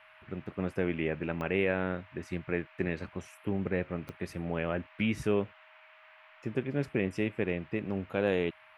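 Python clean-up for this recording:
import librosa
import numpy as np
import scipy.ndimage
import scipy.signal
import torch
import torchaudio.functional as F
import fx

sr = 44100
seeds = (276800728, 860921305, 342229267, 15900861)

y = fx.fix_declick_ar(x, sr, threshold=10.0)
y = fx.notch(y, sr, hz=630.0, q=30.0)
y = fx.noise_reduce(y, sr, print_start_s=5.53, print_end_s=6.03, reduce_db=20.0)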